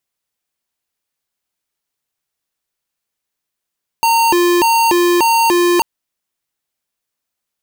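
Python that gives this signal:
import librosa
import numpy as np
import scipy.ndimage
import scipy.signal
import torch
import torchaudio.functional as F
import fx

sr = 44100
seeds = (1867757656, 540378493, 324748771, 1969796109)

y = fx.siren(sr, length_s=1.79, kind='hi-lo', low_hz=350.0, high_hz=918.0, per_s=1.7, wave='square', level_db=-12.0)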